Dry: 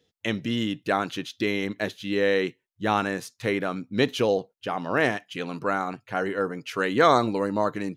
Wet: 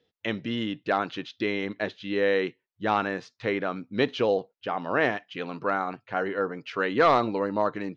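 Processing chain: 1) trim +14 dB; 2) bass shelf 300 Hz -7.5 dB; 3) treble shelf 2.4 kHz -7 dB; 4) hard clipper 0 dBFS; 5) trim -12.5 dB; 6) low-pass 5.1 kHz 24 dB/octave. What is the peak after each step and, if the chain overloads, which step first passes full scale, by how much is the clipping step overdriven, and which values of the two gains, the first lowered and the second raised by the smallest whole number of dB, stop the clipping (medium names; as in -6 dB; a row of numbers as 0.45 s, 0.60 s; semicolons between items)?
+8.0 dBFS, +7.5 dBFS, +6.5 dBFS, 0.0 dBFS, -12.5 dBFS, -12.0 dBFS; step 1, 6.5 dB; step 1 +7 dB, step 5 -5.5 dB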